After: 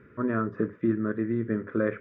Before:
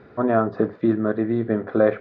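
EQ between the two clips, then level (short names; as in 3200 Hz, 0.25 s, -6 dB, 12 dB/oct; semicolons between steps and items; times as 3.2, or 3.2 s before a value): fixed phaser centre 1800 Hz, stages 4; -3.5 dB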